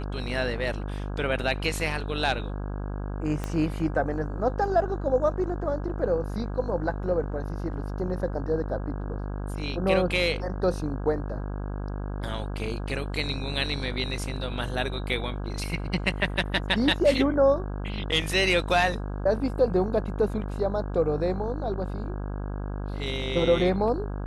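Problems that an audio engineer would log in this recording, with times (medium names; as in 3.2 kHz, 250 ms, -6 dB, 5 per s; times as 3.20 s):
buzz 50 Hz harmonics 33 -32 dBFS
3.44 s: pop -17 dBFS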